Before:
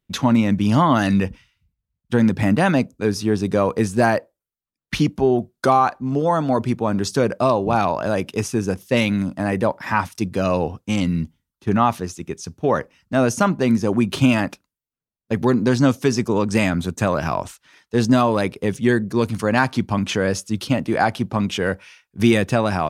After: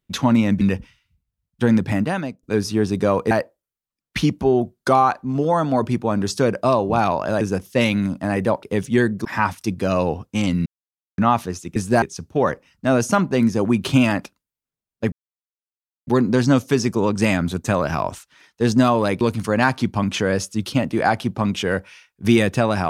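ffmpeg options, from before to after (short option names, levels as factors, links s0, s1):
-filter_complex "[0:a]asplit=13[s0][s1][s2][s3][s4][s5][s6][s7][s8][s9][s10][s11][s12];[s0]atrim=end=0.612[s13];[s1]atrim=start=1.118:end=2.94,asetpts=PTS-STARTPTS,afade=t=out:st=1.162:d=0.66:silence=0.0749894[s14];[s2]atrim=start=2.94:end=3.822,asetpts=PTS-STARTPTS,afade=t=in:d=0.004:c=hsin:silence=0.0749894[s15];[s3]atrim=start=4.078:end=8.182[s16];[s4]atrim=start=8.568:end=9.792[s17];[s5]atrim=start=18.538:end=19.162[s18];[s6]atrim=start=9.788:end=11.2,asetpts=PTS-STARTPTS,afade=t=out:st=1.408:d=0.004:c=hsin[s19];[s7]atrim=start=11.2:end=11.72,asetpts=PTS-STARTPTS,volume=0[s20];[s8]atrim=start=11.72:end=12.302,asetpts=PTS-STARTPTS,afade=t=in:d=0.004:c=hsin[s21];[s9]atrim=start=3.818:end=4.082[s22];[s10]atrim=start=12.298:end=15.4,asetpts=PTS-STARTPTS,afade=t=out:st=3.098:d=0.004:c=hsin,apad=pad_dur=0.95[s23];[s11]atrim=start=15.4:end=18.542,asetpts=PTS-STARTPTS,afade=t=in:d=0.004:c=hsin[s24];[s12]atrim=start=19.158[s25];[s14][s15]concat=n=2:v=0:a=1[s26];[s13][s26]acrossfade=d=0.004:c1=hsin:c2=hsin[s27];[s27][s16]acrossfade=d=0.004:c1=hsin:c2=hsin[s28];[s28][s17]acrossfade=d=0.004:c1=hsin:c2=hsin[s29];[s29][s18]acrossfade=d=0.004:c1=hsin:c2=hsin[s30];[s19][s20][s21]concat=n=3:v=0:a=1[s31];[s30][s31]acrossfade=d=0.004:c1=hsin:c2=hsin[s32];[s32][s22]acrossfade=d=0.004:c1=hsin:c2=hsin[s33];[s23][s24]concat=n=2:v=0:a=1[s34];[s33][s34]acrossfade=d=0.004:c1=hsin:c2=hsin[s35];[s35][s25]acrossfade=d=0.004:c1=hsin:c2=hsin"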